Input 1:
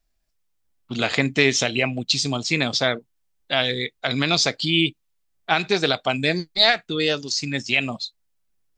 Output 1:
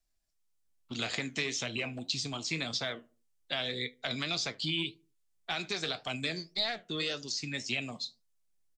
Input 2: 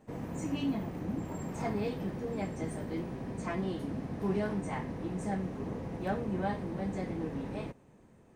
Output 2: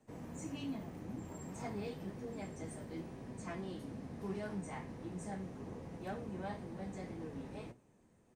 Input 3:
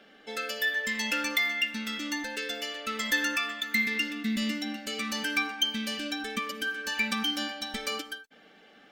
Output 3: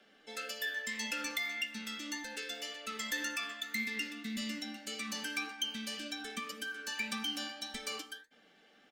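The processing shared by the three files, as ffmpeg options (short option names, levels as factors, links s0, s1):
-filter_complex "[0:a]equalizer=f=8000:w=0.61:g=6.5,acrossover=split=810|3500[s0][s1][s2];[s0]acompressor=threshold=0.0447:ratio=4[s3];[s1]acompressor=threshold=0.0501:ratio=4[s4];[s2]acompressor=threshold=0.0355:ratio=4[s5];[s3][s4][s5]amix=inputs=3:normalize=0,flanger=delay=8:depth=5:regen=68:speed=1.8:shape=sinusoidal,acrossover=split=230|1400|2500[s6][s7][s8][s9];[s7]volume=39.8,asoftclip=hard,volume=0.0251[s10];[s6][s10][s8][s9]amix=inputs=4:normalize=0,asplit=2[s11][s12];[s12]adelay=76,lowpass=f=850:p=1,volume=0.0891,asplit=2[s13][s14];[s14]adelay=76,lowpass=f=850:p=1,volume=0.4,asplit=2[s15][s16];[s16]adelay=76,lowpass=f=850:p=1,volume=0.4[s17];[s11][s13][s15][s17]amix=inputs=4:normalize=0,volume=0.596"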